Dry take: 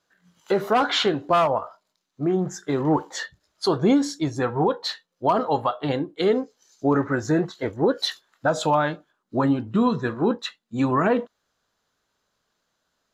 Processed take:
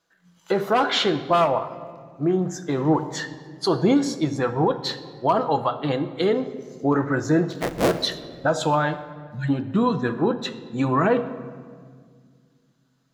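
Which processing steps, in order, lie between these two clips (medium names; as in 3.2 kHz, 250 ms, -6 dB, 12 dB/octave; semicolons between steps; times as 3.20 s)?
7.50–8.00 s: cycle switcher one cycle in 3, inverted; 9.18–9.47 s: spectral replace 230–1400 Hz before; simulated room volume 3100 m³, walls mixed, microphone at 0.69 m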